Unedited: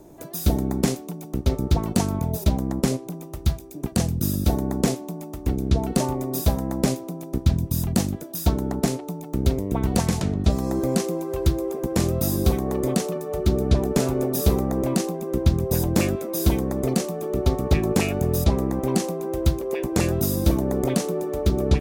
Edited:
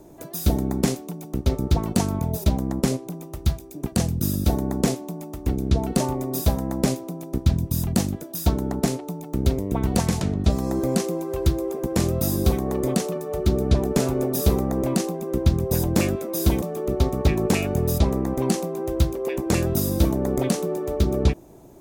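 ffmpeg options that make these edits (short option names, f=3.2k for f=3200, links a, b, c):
-filter_complex "[0:a]asplit=2[a][b];[a]atrim=end=16.622[c];[b]atrim=start=17.078[d];[c][d]acrossfade=d=0.004:c1=hsin:c2=hsin"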